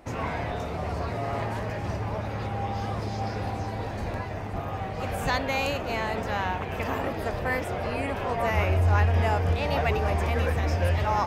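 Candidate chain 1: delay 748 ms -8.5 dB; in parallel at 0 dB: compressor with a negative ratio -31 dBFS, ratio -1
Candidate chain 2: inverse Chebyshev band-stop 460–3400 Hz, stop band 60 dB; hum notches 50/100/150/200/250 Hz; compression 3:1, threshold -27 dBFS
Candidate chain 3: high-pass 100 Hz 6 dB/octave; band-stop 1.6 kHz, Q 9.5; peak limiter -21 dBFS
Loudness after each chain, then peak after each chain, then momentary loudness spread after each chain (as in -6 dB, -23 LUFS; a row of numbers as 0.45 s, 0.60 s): -23.5 LUFS, -35.0 LUFS, -31.5 LUFS; -10.0 dBFS, -21.5 dBFS, -21.0 dBFS; 3 LU, 9 LU, 4 LU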